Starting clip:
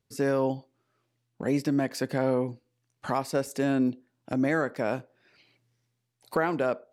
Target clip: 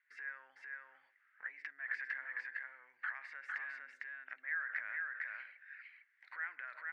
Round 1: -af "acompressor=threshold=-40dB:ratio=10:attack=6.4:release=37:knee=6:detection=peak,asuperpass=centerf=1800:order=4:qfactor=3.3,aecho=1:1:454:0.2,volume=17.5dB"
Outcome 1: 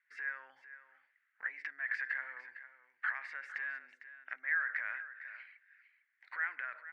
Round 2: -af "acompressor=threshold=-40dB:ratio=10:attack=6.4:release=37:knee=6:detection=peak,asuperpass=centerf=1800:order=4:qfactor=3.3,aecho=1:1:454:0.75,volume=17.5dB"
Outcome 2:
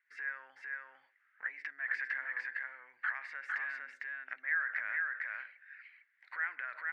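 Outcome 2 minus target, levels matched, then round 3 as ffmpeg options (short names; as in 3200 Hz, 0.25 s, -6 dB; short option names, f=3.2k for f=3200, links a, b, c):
compressor: peak gain reduction -6 dB
-af "acompressor=threshold=-46.5dB:ratio=10:attack=6.4:release=37:knee=6:detection=peak,asuperpass=centerf=1800:order=4:qfactor=3.3,aecho=1:1:454:0.75,volume=17.5dB"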